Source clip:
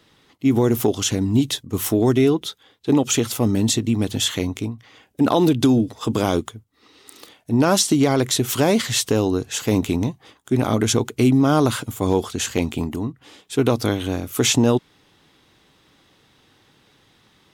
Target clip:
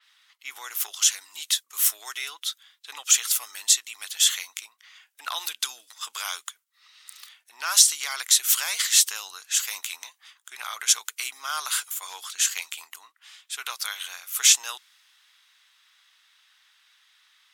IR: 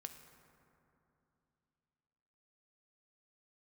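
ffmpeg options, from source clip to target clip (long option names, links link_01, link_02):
-af "highpass=frequency=1300:width=0.5412,highpass=frequency=1300:width=1.3066,adynamicequalizer=threshold=0.0126:dfrequency=4900:dqfactor=0.7:tfrequency=4900:tqfactor=0.7:attack=5:release=100:ratio=0.375:range=4:mode=boostabove:tftype=highshelf,volume=-1dB"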